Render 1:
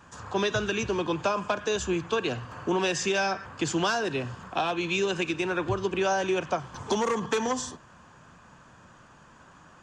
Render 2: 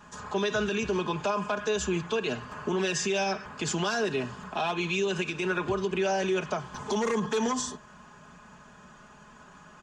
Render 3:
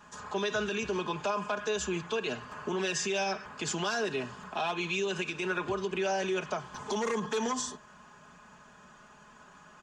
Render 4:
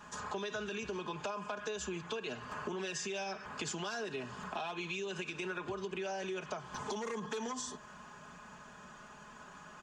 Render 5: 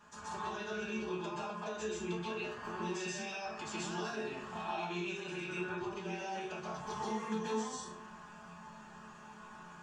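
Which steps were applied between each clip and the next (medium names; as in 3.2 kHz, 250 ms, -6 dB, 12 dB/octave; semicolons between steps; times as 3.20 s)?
comb 4.8 ms, depth 69%; peak limiter -19.5 dBFS, peak gain reduction 8 dB
bass shelf 280 Hz -5.5 dB; trim -2 dB
compression 6:1, threshold -39 dBFS, peak gain reduction 11.5 dB; trim +2 dB
chord resonator D2 minor, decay 0.25 s; plate-style reverb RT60 0.56 s, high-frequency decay 0.6×, pre-delay 115 ms, DRR -6.5 dB; trim +2 dB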